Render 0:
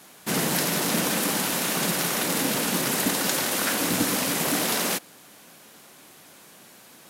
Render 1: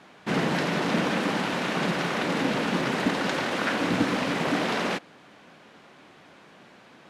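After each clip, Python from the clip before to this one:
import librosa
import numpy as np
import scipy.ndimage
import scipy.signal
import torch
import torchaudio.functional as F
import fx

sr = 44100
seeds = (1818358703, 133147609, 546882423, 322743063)

y = scipy.signal.sosfilt(scipy.signal.butter(2, 2800.0, 'lowpass', fs=sr, output='sos'), x)
y = F.gain(torch.from_numpy(y), 1.5).numpy()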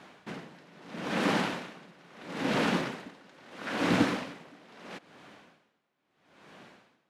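y = x * 10.0 ** (-29 * (0.5 - 0.5 * np.cos(2.0 * np.pi * 0.76 * np.arange(len(x)) / sr)) / 20.0)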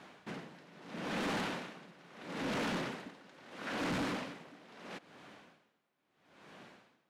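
y = 10.0 ** (-29.5 / 20.0) * np.tanh(x / 10.0 ** (-29.5 / 20.0))
y = F.gain(torch.from_numpy(y), -2.5).numpy()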